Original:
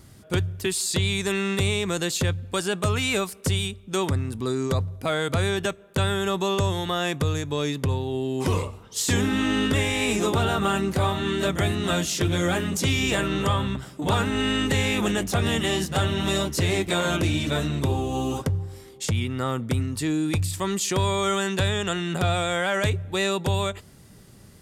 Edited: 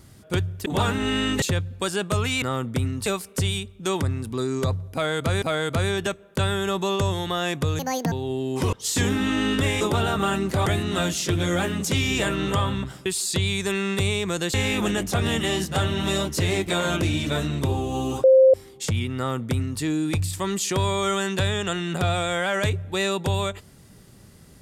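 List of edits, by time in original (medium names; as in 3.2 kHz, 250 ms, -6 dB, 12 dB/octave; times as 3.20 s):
0.66–2.14 s: swap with 13.98–14.74 s
5.01–5.50 s: loop, 2 plays
7.38–7.96 s: speed 177%
8.57–8.85 s: delete
9.93–10.23 s: delete
11.08–11.58 s: delete
18.44–18.74 s: bleep 526 Hz -10 dBFS
19.37–20.01 s: copy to 3.14 s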